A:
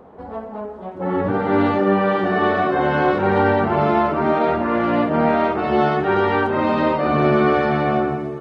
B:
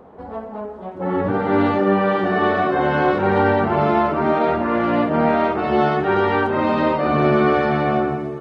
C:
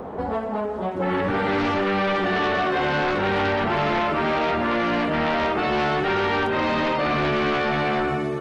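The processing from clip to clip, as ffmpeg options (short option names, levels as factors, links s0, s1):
-af anull
-filter_complex "[0:a]aeval=exprs='0.596*sin(PI/2*2.24*val(0)/0.596)':c=same,apsyclip=2.37,acrossover=split=1700|3400[s0][s1][s2];[s0]acompressor=threshold=0.141:ratio=4[s3];[s1]acompressor=threshold=0.0708:ratio=4[s4];[s2]acompressor=threshold=0.0251:ratio=4[s5];[s3][s4][s5]amix=inputs=3:normalize=0,volume=0.422"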